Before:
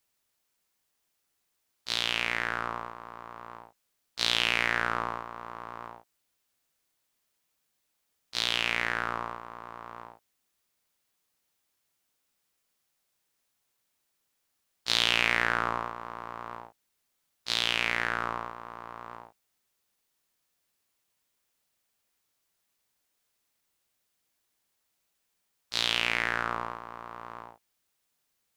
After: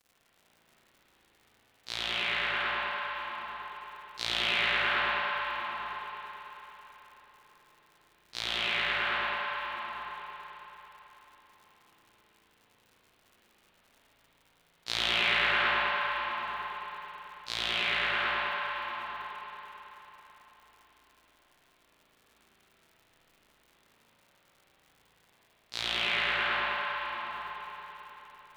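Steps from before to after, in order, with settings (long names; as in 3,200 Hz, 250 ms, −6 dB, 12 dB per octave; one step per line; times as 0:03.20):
surface crackle 150 per second −43 dBFS
spring reverb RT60 4 s, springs 36/54 ms, chirp 55 ms, DRR −7.5 dB
level −7 dB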